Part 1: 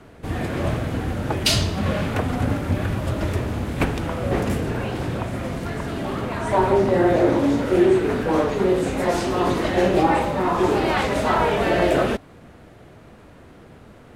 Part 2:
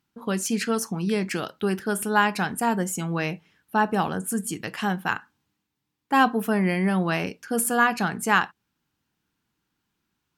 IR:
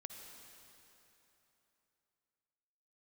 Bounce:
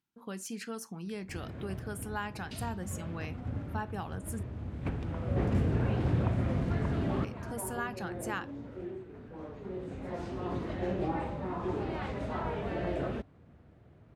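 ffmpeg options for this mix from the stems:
-filter_complex "[0:a]highpass=72,aemphasis=mode=reproduction:type=bsi,adelay=1050,volume=-8.5dB,afade=type=out:start_time=8.69:duration=0.35:silence=0.354813[link_01];[1:a]acompressor=threshold=-27dB:ratio=1.5,volume=-12.5dB,asplit=3[link_02][link_03][link_04];[link_02]atrim=end=4.43,asetpts=PTS-STARTPTS,afade=type=out:start_time=4.426:duration=0.004:curve=hsin[link_05];[link_03]atrim=start=4.43:end=7.24,asetpts=PTS-STARTPTS,volume=0[link_06];[link_04]atrim=start=7.24,asetpts=PTS-STARTPTS,afade=type=in:duration=0.004:curve=hsin[link_07];[link_05][link_06][link_07]concat=n=3:v=0:a=1,asplit=2[link_08][link_09];[link_09]apad=whole_len=670634[link_10];[link_01][link_10]sidechaincompress=threshold=-50dB:ratio=12:attack=16:release=1490[link_11];[link_11][link_08]amix=inputs=2:normalize=0"

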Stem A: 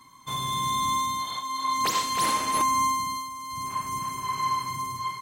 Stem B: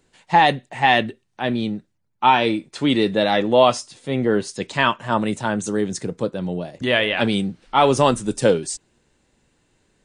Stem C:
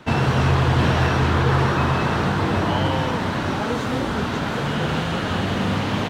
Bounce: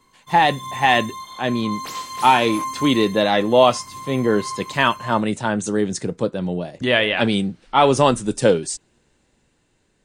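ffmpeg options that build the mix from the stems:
ffmpeg -i stem1.wav -i stem2.wav -filter_complex "[0:a]flanger=delay=19:depth=3.1:speed=0.6,volume=-4dB[link_01];[1:a]volume=-1dB[link_02];[link_01][link_02]amix=inputs=2:normalize=0,dynaudnorm=framelen=160:gausssize=11:maxgain=5dB" out.wav

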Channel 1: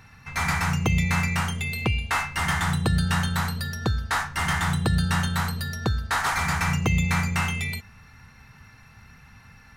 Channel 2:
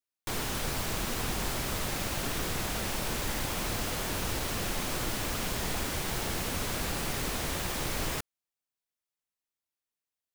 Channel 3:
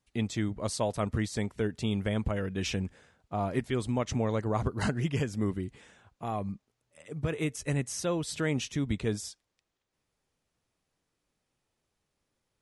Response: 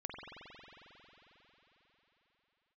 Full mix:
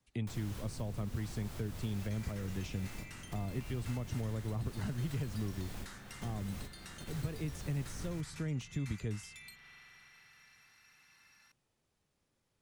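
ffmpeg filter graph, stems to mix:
-filter_complex "[0:a]acompressor=threshold=-33dB:ratio=1.5,bandpass=frequency=7300:width_type=q:width=0.57:csg=0,adelay=1750,volume=-7dB,asplit=2[link_01][link_02];[link_02]volume=-4.5dB[link_03];[1:a]volume=-9dB,asplit=2[link_04][link_05];[link_05]volume=-9.5dB[link_06];[2:a]volume=-0.5dB,asplit=2[link_07][link_08];[link_08]apad=whole_len=456013[link_09];[link_04][link_09]sidechaingate=range=-33dB:threshold=-52dB:ratio=16:detection=peak[link_10];[3:a]atrim=start_sample=2205[link_11];[link_03][link_06]amix=inputs=2:normalize=0[link_12];[link_12][link_11]afir=irnorm=-1:irlink=0[link_13];[link_01][link_10][link_07][link_13]amix=inputs=4:normalize=0,acrossover=split=140|360[link_14][link_15][link_16];[link_14]acompressor=threshold=-40dB:ratio=4[link_17];[link_15]acompressor=threshold=-48dB:ratio=4[link_18];[link_16]acompressor=threshold=-50dB:ratio=4[link_19];[link_17][link_18][link_19]amix=inputs=3:normalize=0,equalizer=frequency=140:width=0.76:gain=3.5"

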